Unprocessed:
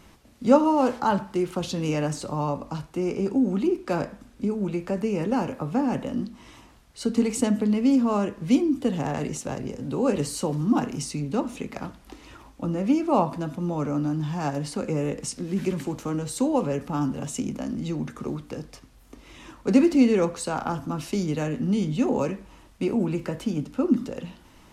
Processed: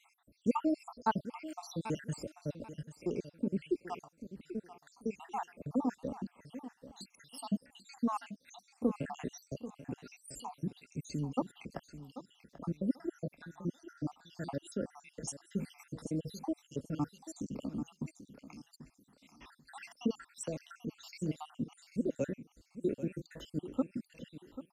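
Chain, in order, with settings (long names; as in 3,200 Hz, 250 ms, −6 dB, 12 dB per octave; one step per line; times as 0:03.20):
time-frequency cells dropped at random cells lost 79%
on a send: repeating echo 788 ms, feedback 24%, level −13.5 dB
on the sum: level −6.5 dB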